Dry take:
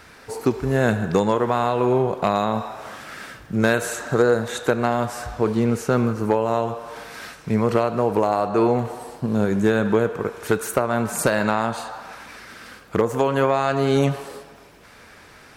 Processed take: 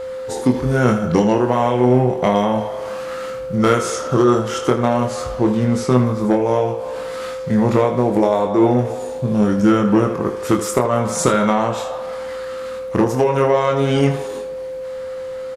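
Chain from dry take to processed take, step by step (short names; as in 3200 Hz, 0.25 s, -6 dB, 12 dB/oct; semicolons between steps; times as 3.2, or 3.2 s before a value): formant shift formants -3 st; early reflections 24 ms -5.5 dB, 79 ms -12 dB; whine 520 Hz -28 dBFS; gain +3 dB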